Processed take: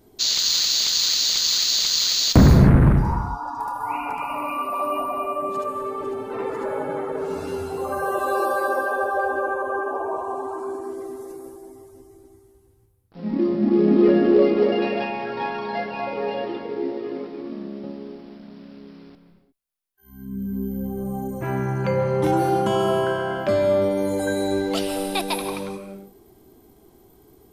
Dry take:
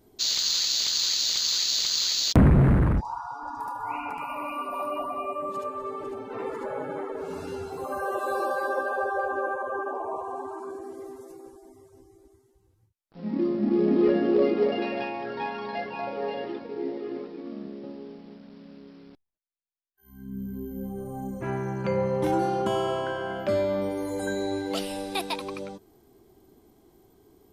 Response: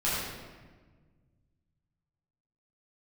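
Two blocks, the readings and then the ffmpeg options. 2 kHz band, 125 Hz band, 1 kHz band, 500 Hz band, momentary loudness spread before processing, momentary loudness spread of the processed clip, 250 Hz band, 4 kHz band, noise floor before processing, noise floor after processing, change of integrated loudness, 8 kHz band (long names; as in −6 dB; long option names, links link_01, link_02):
+5.0 dB, +5.5 dB, +5.5 dB, +5.5 dB, 16 LU, 16 LU, +5.5 dB, +5.0 dB, −64 dBFS, −55 dBFS, +5.5 dB, can't be measured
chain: -filter_complex "[0:a]asplit=2[link_01][link_02];[link_02]highshelf=frequency=7800:width_type=q:width=1.5:gain=12[link_03];[1:a]atrim=start_sample=2205,afade=type=out:start_time=0.29:duration=0.01,atrim=end_sample=13230,adelay=131[link_04];[link_03][link_04]afir=irnorm=-1:irlink=0,volume=-17.5dB[link_05];[link_01][link_05]amix=inputs=2:normalize=0,volume=4.5dB"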